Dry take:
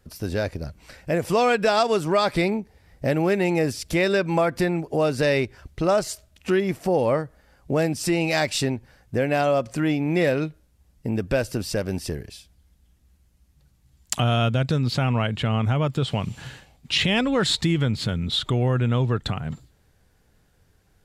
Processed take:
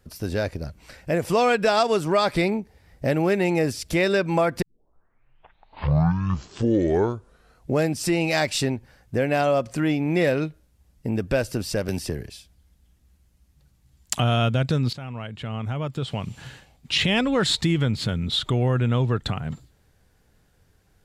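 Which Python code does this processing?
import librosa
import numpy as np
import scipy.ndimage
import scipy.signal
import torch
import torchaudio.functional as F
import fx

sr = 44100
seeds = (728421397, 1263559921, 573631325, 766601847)

y = fx.band_squash(x, sr, depth_pct=70, at=(11.88, 12.28))
y = fx.edit(y, sr, fx.tape_start(start_s=4.62, length_s=3.28),
    fx.fade_in_from(start_s=14.93, length_s=2.14, floor_db=-15.0), tone=tone)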